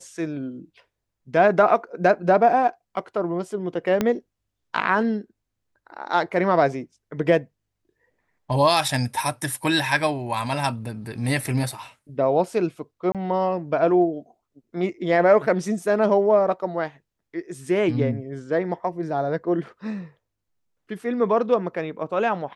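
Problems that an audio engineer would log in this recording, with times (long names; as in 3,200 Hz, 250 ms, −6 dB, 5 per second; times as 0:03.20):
0:04.01: click −8 dBFS
0:13.12–0:13.15: drop-out 27 ms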